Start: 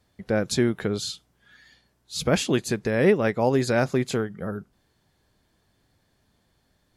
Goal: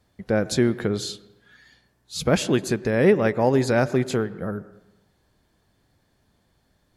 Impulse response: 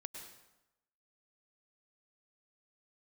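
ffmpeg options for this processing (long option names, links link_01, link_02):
-filter_complex "[0:a]asplit=2[link_01][link_02];[1:a]atrim=start_sample=2205,lowpass=2200[link_03];[link_02][link_03]afir=irnorm=-1:irlink=0,volume=-6.5dB[link_04];[link_01][link_04]amix=inputs=2:normalize=0"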